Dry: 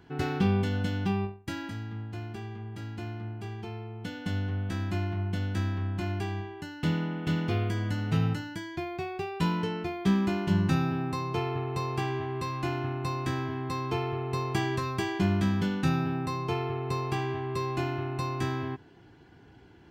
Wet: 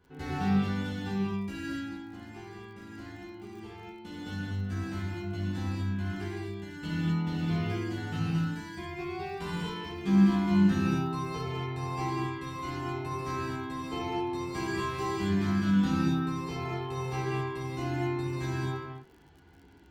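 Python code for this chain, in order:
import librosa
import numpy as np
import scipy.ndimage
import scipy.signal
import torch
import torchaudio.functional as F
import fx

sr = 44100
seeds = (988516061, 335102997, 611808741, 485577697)

y = fx.chorus_voices(x, sr, voices=6, hz=0.13, base_ms=13, depth_ms=2.3, mix_pct=45)
y = fx.rev_gated(y, sr, seeds[0], gate_ms=290, shape='flat', drr_db=-7.5)
y = fx.dmg_crackle(y, sr, seeds[1], per_s=43.0, level_db=-42.0)
y = y * librosa.db_to_amplitude(-7.5)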